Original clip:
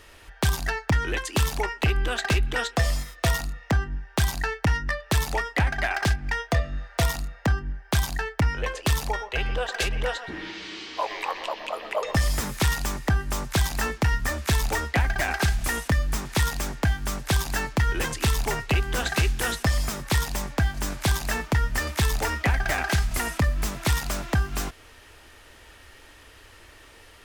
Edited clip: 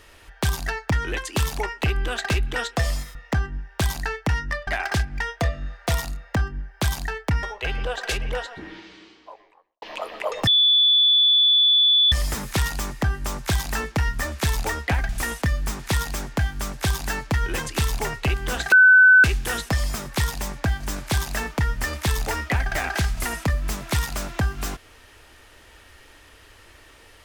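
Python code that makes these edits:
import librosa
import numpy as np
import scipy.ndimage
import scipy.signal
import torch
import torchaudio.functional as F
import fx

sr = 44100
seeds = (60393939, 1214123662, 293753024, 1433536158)

y = fx.studio_fade_out(x, sr, start_s=9.82, length_s=1.71)
y = fx.edit(y, sr, fx.cut(start_s=3.15, length_s=0.38),
    fx.cut(start_s=5.05, length_s=0.73),
    fx.cut(start_s=8.54, length_s=0.6),
    fx.insert_tone(at_s=12.18, length_s=1.65, hz=3460.0, db=-13.5),
    fx.cut(start_s=15.15, length_s=0.4),
    fx.insert_tone(at_s=19.18, length_s=0.52, hz=1510.0, db=-8.5), tone=tone)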